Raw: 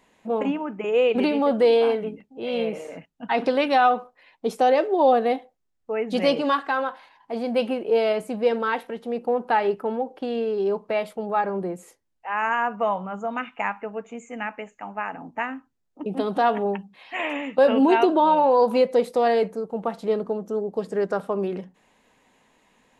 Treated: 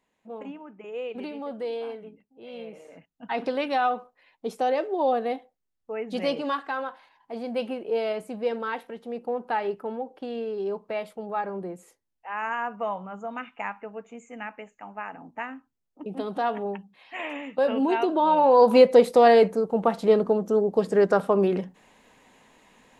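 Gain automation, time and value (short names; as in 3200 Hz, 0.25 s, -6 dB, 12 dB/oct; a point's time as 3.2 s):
2.66 s -14 dB
3.3 s -6 dB
18.04 s -6 dB
18.78 s +4.5 dB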